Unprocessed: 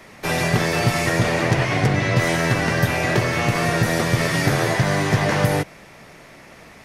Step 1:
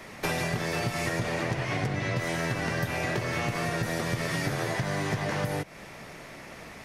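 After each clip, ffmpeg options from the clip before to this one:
ffmpeg -i in.wav -af "acompressor=threshold=-26dB:ratio=10" out.wav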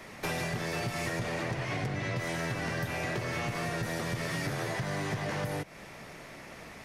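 ffmpeg -i in.wav -af "asoftclip=type=tanh:threshold=-22.5dB,volume=-2.5dB" out.wav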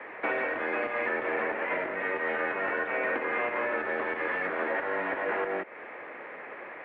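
ffmpeg -i in.wav -af "highpass=frequency=470:width_type=q:width=0.5412,highpass=frequency=470:width_type=q:width=1.307,lowpass=frequency=2500:width_type=q:width=0.5176,lowpass=frequency=2500:width_type=q:width=0.7071,lowpass=frequency=2500:width_type=q:width=1.932,afreqshift=-110,volume=7dB" out.wav

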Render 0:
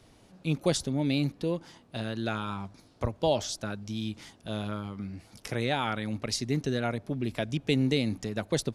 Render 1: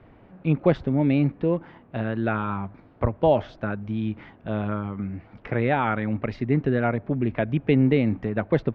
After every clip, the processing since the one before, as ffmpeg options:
ffmpeg -i in.wav -af "lowpass=frequency=2200:width=0.5412,lowpass=frequency=2200:width=1.3066,volume=7dB" out.wav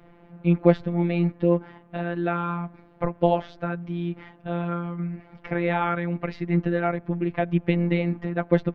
ffmpeg -i in.wav -af "afftfilt=real='hypot(re,im)*cos(PI*b)':imag='0':win_size=1024:overlap=0.75,volume=3.5dB" out.wav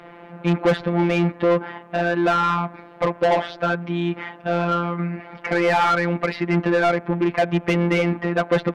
ffmpeg -i in.wav -filter_complex "[0:a]asplit=2[link_01][link_02];[link_02]highpass=frequency=720:poles=1,volume=29dB,asoftclip=type=tanh:threshold=-1.5dB[link_03];[link_01][link_03]amix=inputs=2:normalize=0,lowpass=frequency=3300:poles=1,volume=-6dB,volume=-6.5dB" out.wav

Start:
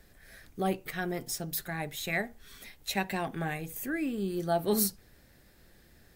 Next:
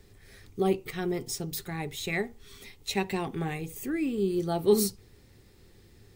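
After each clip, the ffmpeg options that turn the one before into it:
ffmpeg -i in.wav -af "equalizer=frequency=100:width_type=o:width=0.33:gain=11,equalizer=frequency=400:width_type=o:width=0.33:gain=8,equalizer=frequency=630:width_type=o:width=0.33:gain=-10,equalizer=frequency=1600:width_type=o:width=0.33:gain=-10,equalizer=frequency=12500:width_type=o:width=0.33:gain=-11,volume=2dB" out.wav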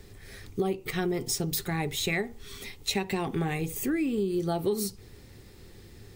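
ffmpeg -i in.wav -af "acompressor=threshold=-31dB:ratio=12,volume=6.5dB" out.wav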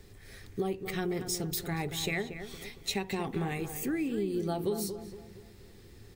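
ffmpeg -i in.wav -filter_complex "[0:a]asplit=2[link_01][link_02];[link_02]adelay=232,lowpass=frequency=2000:poles=1,volume=-9dB,asplit=2[link_03][link_04];[link_04]adelay=232,lowpass=frequency=2000:poles=1,volume=0.44,asplit=2[link_05][link_06];[link_06]adelay=232,lowpass=frequency=2000:poles=1,volume=0.44,asplit=2[link_07][link_08];[link_08]adelay=232,lowpass=frequency=2000:poles=1,volume=0.44,asplit=2[link_09][link_10];[link_10]adelay=232,lowpass=frequency=2000:poles=1,volume=0.44[link_11];[link_01][link_03][link_05][link_07][link_09][link_11]amix=inputs=6:normalize=0,volume=-4dB" out.wav

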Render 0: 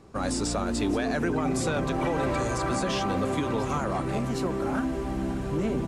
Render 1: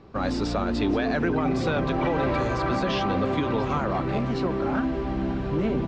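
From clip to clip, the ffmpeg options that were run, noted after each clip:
ffmpeg -i in.wav -af "lowpass=frequency=4600:width=0.5412,lowpass=frequency=4600:width=1.3066,volume=2.5dB" out.wav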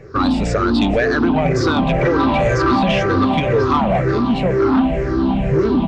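ffmpeg -i in.wav -af "afftfilt=real='re*pow(10,18/40*sin(2*PI*(0.52*log(max(b,1)*sr/1024/100)/log(2)-(-2)*(pts-256)/sr)))':imag='im*pow(10,18/40*sin(2*PI*(0.52*log(max(b,1)*sr/1024/100)/log(2)-(-2)*(pts-256)/sr)))':win_size=1024:overlap=0.75,asoftclip=type=tanh:threshold=-14.5dB,volume=7dB" out.wav

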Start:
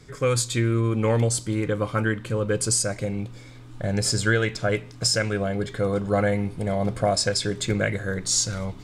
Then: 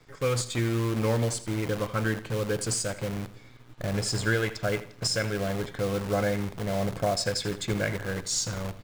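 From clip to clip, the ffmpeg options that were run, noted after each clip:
ffmpeg -i in.wav -filter_complex "[0:a]acrossover=split=820[link_01][link_02];[link_01]acrusher=bits=6:dc=4:mix=0:aa=0.000001[link_03];[link_02]adynamicsmooth=sensitivity=7.5:basefreq=5100[link_04];[link_03][link_04]amix=inputs=2:normalize=0,aecho=1:1:82|164|246:0.178|0.0622|0.0218,volume=-4.5dB" out.wav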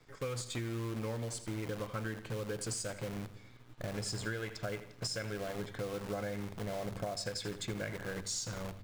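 ffmpeg -i in.wav -af "bandreject=frequency=49.07:width_type=h:width=4,bandreject=frequency=98.14:width_type=h:width=4,bandreject=frequency=147.21:width_type=h:width=4,bandreject=frequency=196.28:width_type=h:width=4,acompressor=threshold=-29dB:ratio=6,volume=-5.5dB" out.wav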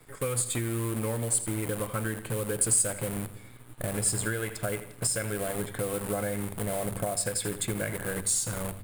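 ffmpeg -i in.wav -af "highshelf=frequency=7400:width_type=q:width=3:gain=9.5,volume=7dB" out.wav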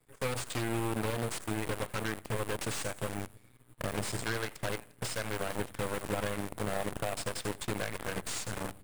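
ffmpeg -i in.wav -filter_complex "[0:a]aeval=exprs='0.0631*(abs(mod(val(0)/0.0631+3,4)-2)-1)':channel_layout=same,aeval=exprs='0.0631*(cos(1*acos(clip(val(0)/0.0631,-1,1)))-cos(1*PI/2))+0.0224*(cos(3*acos(clip(val(0)/0.0631,-1,1)))-cos(3*PI/2))+0.00708*(cos(4*acos(clip(val(0)/0.0631,-1,1)))-cos(4*PI/2))+0.000398*(cos(7*acos(clip(val(0)/0.0631,-1,1)))-cos(7*PI/2))+0.00158*(cos(8*acos(clip(val(0)/0.0631,-1,1)))-cos(8*PI/2))':channel_layout=same,acrossover=split=6100[link_01][link_02];[link_02]acompressor=threshold=-43dB:ratio=4:attack=1:release=60[link_03];[link_01][link_03]amix=inputs=2:normalize=0" out.wav

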